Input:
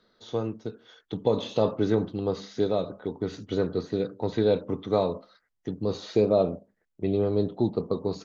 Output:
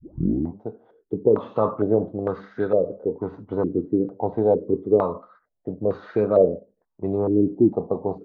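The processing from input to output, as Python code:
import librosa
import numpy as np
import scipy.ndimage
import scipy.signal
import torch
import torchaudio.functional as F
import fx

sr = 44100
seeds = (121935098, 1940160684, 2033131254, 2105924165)

y = fx.tape_start_head(x, sr, length_s=0.62)
y = fx.filter_held_lowpass(y, sr, hz=2.2, low_hz=320.0, high_hz=1500.0)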